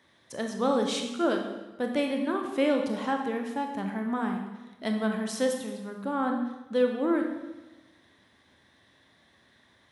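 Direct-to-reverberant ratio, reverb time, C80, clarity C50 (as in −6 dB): 3.0 dB, 1.2 s, 7.5 dB, 5.0 dB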